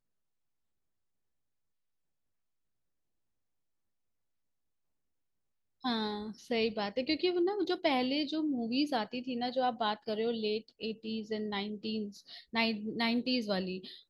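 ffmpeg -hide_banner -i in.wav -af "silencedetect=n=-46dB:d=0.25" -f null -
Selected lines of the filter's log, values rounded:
silence_start: 0.00
silence_end: 5.84 | silence_duration: 5.84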